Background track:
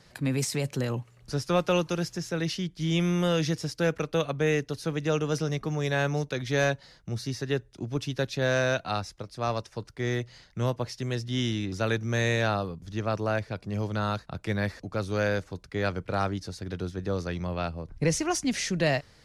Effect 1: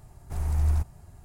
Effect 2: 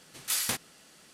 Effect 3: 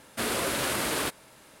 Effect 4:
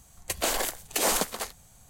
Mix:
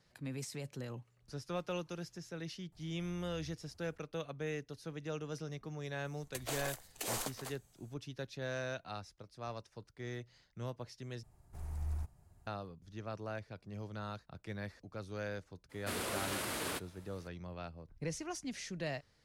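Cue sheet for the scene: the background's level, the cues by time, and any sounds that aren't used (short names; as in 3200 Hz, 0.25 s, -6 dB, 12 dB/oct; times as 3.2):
background track -14.5 dB
2.72 add 1 -14.5 dB + compressor 2.5:1, threshold -46 dBFS
6.05 add 4 -13.5 dB
11.23 replace with 1 -14.5 dB
15.69 add 3 -10 dB, fades 0.02 s
not used: 2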